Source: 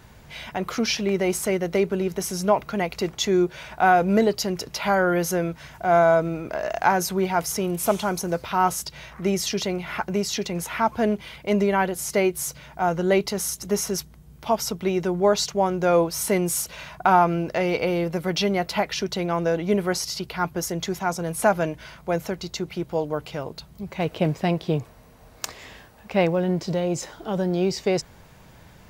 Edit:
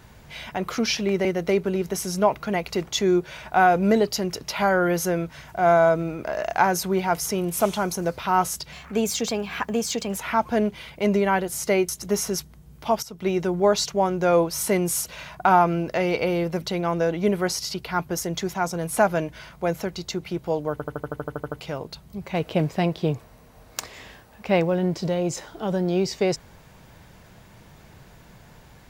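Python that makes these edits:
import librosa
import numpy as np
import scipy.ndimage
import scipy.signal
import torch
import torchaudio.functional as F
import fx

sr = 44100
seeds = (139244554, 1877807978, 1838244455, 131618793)

y = fx.edit(x, sr, fx.cut(start_s=1.25, length_s=0.26),
    fx.speed_span(start_s=8.98, length_s=1.66, speed=1.14),
    fx.cut(start_s=12.35, length_s=1.14),
    fx.fade_in_from(start_s=14.63, length_s=0.25, curve='qua', floor_db=-14.0),
    fx.cut(start_s=18.22, length_s=0.85),
    fx.stutter(start_s=23.17, slice_s=0.08, count=11), tone=tone)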